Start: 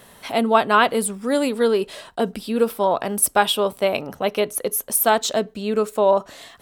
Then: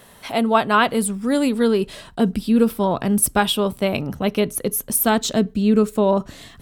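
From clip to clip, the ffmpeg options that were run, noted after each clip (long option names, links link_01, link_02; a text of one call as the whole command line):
ffmpeg -i in.wav -af "asubboost=boost=7.5:cutoff=240" out.wav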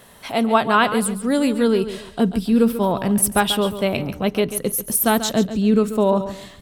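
ffmpeg -i in.wav -af "aecho=1:1:139|278|417:0.266|0.0718|0.0194" out.wav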